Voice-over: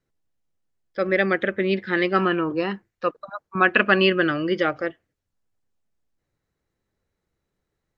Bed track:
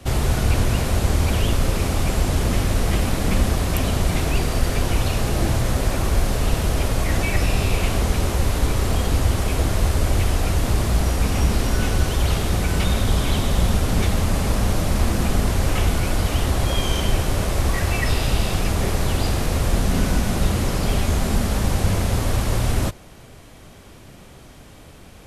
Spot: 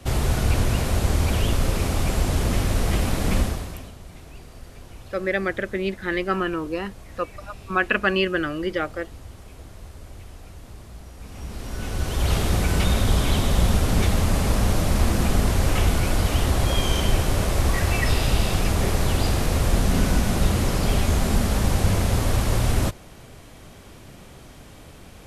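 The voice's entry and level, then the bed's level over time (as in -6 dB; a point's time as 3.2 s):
4.15 s, -3.5 dB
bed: 3.39 s -2 dB
3.96 s -22 dB
11.12 s -22 dB
12.35 s -0.5 dB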